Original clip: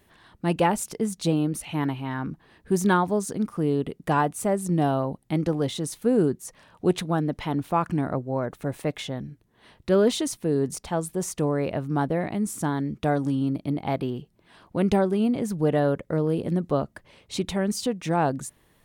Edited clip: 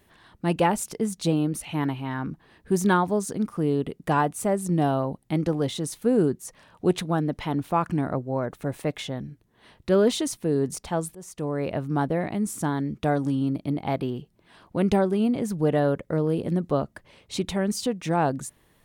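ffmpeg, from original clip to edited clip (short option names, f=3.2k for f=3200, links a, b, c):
-filter_complex "[0:a]asplit=2[a][b];[a]atrim=end=11.15,asetpts=PTS-STARTPTS,afade=t=out:st=11.146:d=0.004:c=hsin:silence=0.11885[c];[b]atrim=start=11.15,asetpts=PTS-STARTPTS,afade=t=in:d=0.59:silence=0.11885[d];[c][d]concat=n=2:v=0:a=1"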